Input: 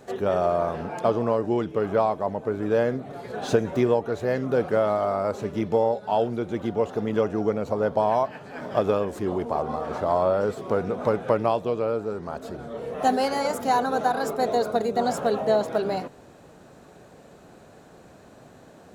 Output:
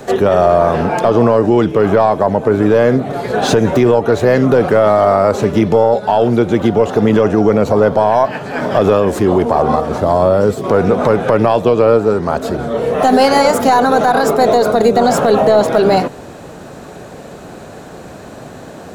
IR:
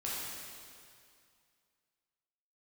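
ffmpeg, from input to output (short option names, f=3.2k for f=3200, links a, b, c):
-filter_complex "[0:a]asettb=1/sr,asplit=3[a][b][c];[a]atrim=end=9.804[d];[b]atrim=start=9.8:end=10.64,asetpts=PTS-STARTPTS,afade=t=in:d=0.004:c=qsin,afade=t=out:st=0.836:d=0.004:c=qsin,equalizer=f=1.4k:w=0.32:g=-8.5[e];[c]atrim=start=10.636[f];[d][e]acrossfade=d=0.004:c1=hsin:c2=qsin[g];[g][f]acrossfade=d=0.004:c1=qsin:c2=hsin,acrossover=split=180|5500[h][i][j];[i]aeval=exprs='0.398*(cos(1*acos(clip(val(0)/0.398,-1,1)))-cos(1*PI/2))+0.0501*(cos(2*acos(clip(val(0)/0.398,-1,1)))-cos(2*PI/2))':c=same[k];[j]asoftclip=type=tanh:threshold=-38dB[l];[h][k][l]amix=inputs=3:normalize=0,alimiter=level_in=18dB:limit=-1dB:release=50:level=0:latency=1,volume=-1dB"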